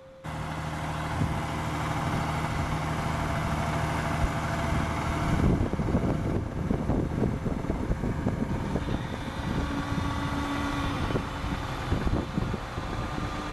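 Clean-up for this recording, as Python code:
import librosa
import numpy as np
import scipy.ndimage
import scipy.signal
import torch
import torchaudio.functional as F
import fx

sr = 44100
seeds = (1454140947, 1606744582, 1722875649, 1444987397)

y = fx.fix_declip(x, sr, threshold_db=-16.0)
y = fx.notch(y, sr, hz=530.0, q=30.0)
y = fx.fix_echo_inverse(y, sr, delay_ms=857, level_db=-8.5)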